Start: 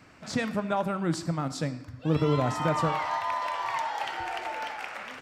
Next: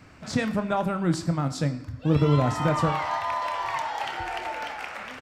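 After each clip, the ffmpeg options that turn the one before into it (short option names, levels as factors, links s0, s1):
-filter_complex "[0:a]lowshelf=f=120:g=10,asplit=2[s0][s1];[s1]adelay=28,volume=0.251[s2];[s0][s2]amix=inputs=2:normalize=0,volume=1.19"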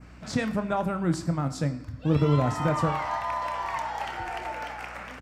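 -af "aeval=exprs='val(0)+0.00447*(sin(2*PI*60*n/s)+sin(2*PI*2*60*n/s)/2+sin(2*PI*3*60*n/s)/3+sin(2*PI*4*60*n/s)/4+sin(2*PI*5*60*n/s)/5)':c=same,adynamicequalizer=threshold=0.00282:dfrequency=3600:dqfactor=1.3:tfrequency=3600:tqfactor=1.3:attack=5:release=100:ratio=0.375:range=2.5:mode=cutabove:tftype=bell,volume=0.841"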